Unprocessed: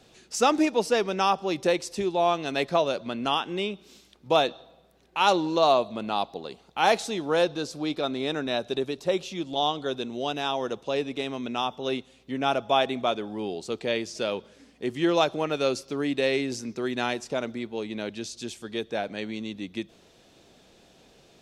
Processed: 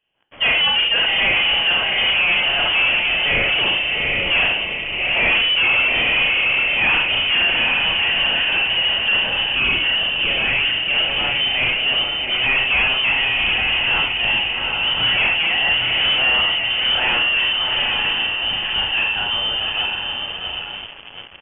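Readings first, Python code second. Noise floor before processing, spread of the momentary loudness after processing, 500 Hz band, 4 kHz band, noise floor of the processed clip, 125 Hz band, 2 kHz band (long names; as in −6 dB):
−58 dBFS, 5 LU, −5.5 dB, +18.5 dB, −31 dBFS, +4.5 dB, +19.5 dB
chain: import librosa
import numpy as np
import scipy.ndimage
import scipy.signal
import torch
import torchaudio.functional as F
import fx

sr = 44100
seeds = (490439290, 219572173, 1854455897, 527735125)

y = fx.low_shelf(x, sr, hz=150.0, db=-9.0)
y = fx.echo_diffused(y, sr, ms=797, feedback_pct=42, wet_db=-5.0)
y = fx.rev_schroeder(y, sr, rt60_s=0.41, comb_ms=28, drr_db=-0.5)
y = fx.leveller(y, sr, passes=5)
y = fx.freq_invert(y, sr, carrier_hz=3300)
y = y * librosa.db_to_amplitude(-8.0)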